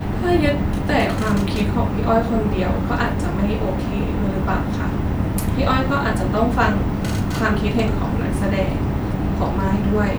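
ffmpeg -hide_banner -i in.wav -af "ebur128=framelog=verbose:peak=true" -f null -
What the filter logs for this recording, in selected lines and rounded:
Integrated loudness:
  I:         -20.2 LUFS
  Threshold: -30.2 LUFS
Loudness range:
  LRA:         1.5 LU
  Threshold: -40.4 LUFS
  LRA low:   -21.2 LUFS
  LRA high:  -19.7 LUFS
True peak:
  Peak:       -3.8 dBFS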